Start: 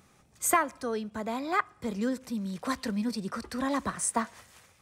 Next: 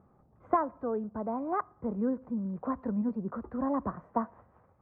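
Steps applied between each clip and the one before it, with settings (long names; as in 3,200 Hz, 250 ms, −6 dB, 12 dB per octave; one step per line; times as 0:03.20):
low-pass filter 1,100 Hz 24 dB per octave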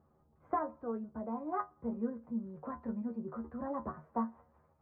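stiff-string resonator 75 Hz, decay 0.21 s, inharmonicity 0.002
level +1 dB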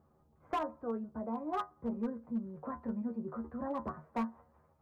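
gain into a clipping stage and back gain 29.5 dB
level +1 dB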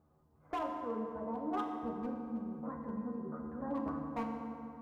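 feedback delay network reverb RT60 3 s, high-frequency decay 0.5×, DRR 1.5 dB
level −3.5 dB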